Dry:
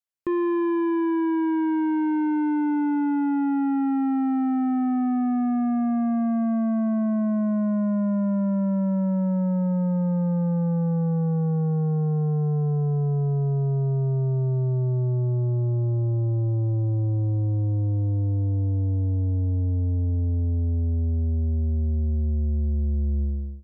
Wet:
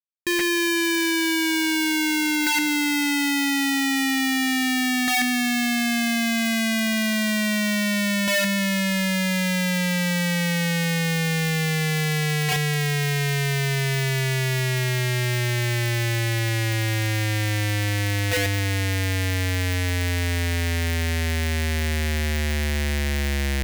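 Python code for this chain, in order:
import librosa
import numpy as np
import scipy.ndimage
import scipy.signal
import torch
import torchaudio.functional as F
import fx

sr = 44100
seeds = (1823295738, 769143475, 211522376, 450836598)

y = fx.hum_notches(x, sr, base_hz=50, count=9)
y = fx.schmitt(y, sr, flips_db=-49.0)
y = fx.high_shelf_res(y, sr, hz=1500.0, db=6.5, q=3.0)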